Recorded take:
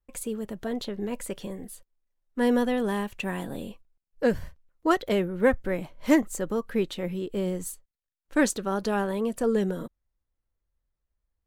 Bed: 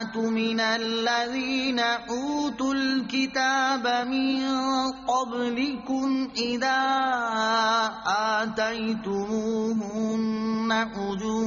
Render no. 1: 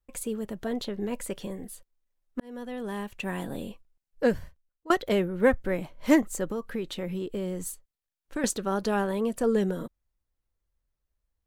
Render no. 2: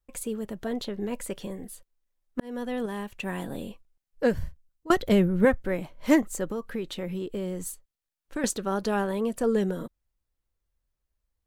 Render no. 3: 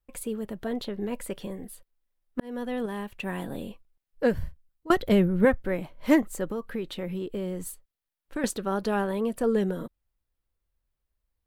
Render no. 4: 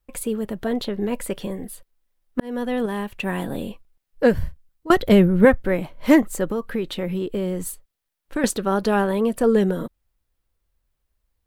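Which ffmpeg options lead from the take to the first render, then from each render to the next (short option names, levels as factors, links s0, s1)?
-filter_complex "[0:a]asettb=1/sr,asplit=3[s0][s1][s2];[s0]atrim=end=6.514[s3];[s1]atrim=start=6.51:end=8.44,asetpts=PTS-STARTPTS,afade=t=in:d=0.004:c=qsin,afade=t=out:st=1.926:d=0.004:c=qsin,acompressor=threshold=0.0447:ratio=6:attack=3.2:release=140:knee=1:detection=peak[s4];[s2]atrim=start=8.436[s5];[s3][s4]acrossfade=d=0.004:c1=hsin:c2=qsin[s6];[s6][s5]acrossfade=d=0.004:c1=qsin:c2=hsin,asplit=3[s7][s8][s9];[s7]atrim=end=2.4,asetpts=PTS-STARTPTS,afade=t=out:st=2.396:d=0.004:c=hsin[s10];[s8]atrim=start=2.4:end=4.9,asetpts=PTS-STARTPTS,afade=t=in:d=1.06,afade=t=out:st=1.87:d=0.63:c=qua:silence=0.0944061[s11];[s9]atrim=start=4.9,asetpts=PTS-STARTPTS,afade=t=in:d=0.004:c=hsin:silence=0.0944061[s12];[s10][s11][s12]concat=n=3:v=0:a=1"
-filter_complex "[0:a]asettb=1/sr,asplit=3[s0][s1][s2];[s0]atrim=end=2.394[s3];[s1]atrim=start=2.39:end=2.86,asetpts=PTS-STARTPTS,afade=t=in:d=0.004:c=qsin,afade=t=out:st=0.466:d=0.004:c=qsin,acontrast=29[s4];[s2]atrim=start=2.856[s5];[s3][s4]acrossfade=d=0.004:c1=hsin:c2=qsin[s6];[s6][s5]acrossfade=d=0.004:c1=qsin:c2=hsin,asettb=1/sr,asplit=3[s7][s8][s9];[s7]atrim=end=4.374[s10];[s8]atrim=start=4.37:end=5.45,asetpts=PTS-STARTPTS,afade=t=in:d=0.004:c=qsin,afade=t=out:st=1.076:d=0.004:c=qsin,bass=f=250:g=11,treble=f=4000:g=3[s11];[s9]atrim=start=5.446[s12];[s10][s11]acrossfade=d=0.004:c1=hsin:c2=qsin[s13];[s13][s12]acrossfade=d=0.004:c1=qsin:c2=hsin"
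-af "equalizer=f=6600:t=o:w=0.78:g=-6.5"
-af "volume=2.24,alimiter=limit=0.794:level=0:latency=1"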